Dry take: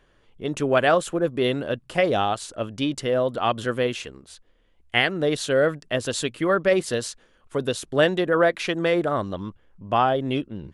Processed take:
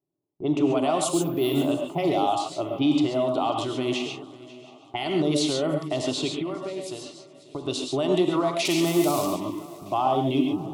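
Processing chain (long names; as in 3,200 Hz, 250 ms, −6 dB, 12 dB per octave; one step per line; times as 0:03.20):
0:08.65–0:09.26: spike at every zero crossing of −19 dBFS
low-pass that shuts in the quiet parts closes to 410 Hz, open at −18.5 dBFS
high-pass filter 210 Hz 12 dB per octave
noise gate with hold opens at −46 dBFS
low-shelf EQ 330 Hz +4 dB
0:06.36–0:07.65: downward compressor 6 to 1, threshold −35 dBFS, peak gain reduction 19.5 dB
brickwall limiter −19 dBFS, peak gain reduction 14.5 dB
phaser with its sweep stopped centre 330 Hz, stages 8
0:01.09–0:01.57: bad sample-rate conversion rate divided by 3×, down none, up hold
feedback echo with a long and a short gap by turns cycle 722 ms, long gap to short 3 to 1, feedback 37%, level −20 dB
reverb whose tail is shaped and stops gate 160 ms rising, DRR 2.5 dB
level +6.5 dB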